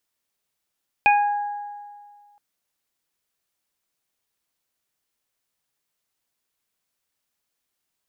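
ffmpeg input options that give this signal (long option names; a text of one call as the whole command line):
ffmpeg -f lavfi -i "aevalsrc='0.224*pow(10,-3*t/1.91)*sin(2*PI*823*t)+0.0596*pow(10,-3*t/1.31)*sin(2*PI*1646*t)+0.224*pow(10,-3*t/0.33)*sin(2*PI*2469*t)':duration=1.32:sample_rate=44100" out.wav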